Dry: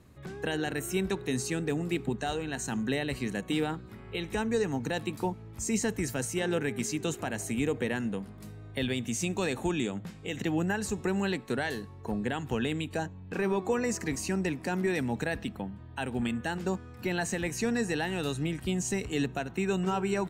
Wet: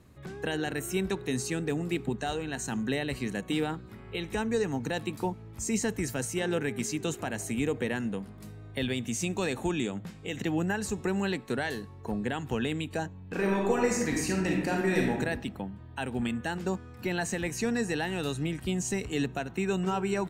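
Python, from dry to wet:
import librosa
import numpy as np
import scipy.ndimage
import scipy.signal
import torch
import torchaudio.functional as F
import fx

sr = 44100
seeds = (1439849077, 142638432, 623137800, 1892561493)

y = fx.reverb_throw(x, sr, start_s=13.3, length_s=1.81, rt60_s=0.92, drr_db=-1.0)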